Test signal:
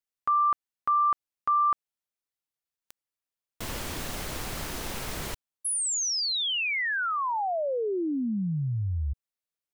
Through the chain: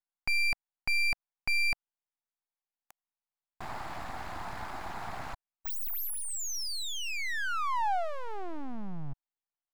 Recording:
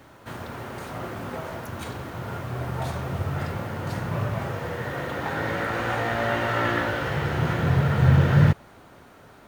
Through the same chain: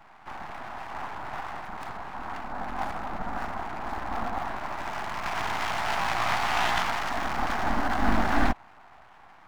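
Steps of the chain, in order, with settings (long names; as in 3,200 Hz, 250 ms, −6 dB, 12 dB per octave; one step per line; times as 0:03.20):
adaptive Wiener filter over 15 samples
full-wave rectification
low shelf with overshoot 620 Hz −6.5 dB, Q 3
level +2 dB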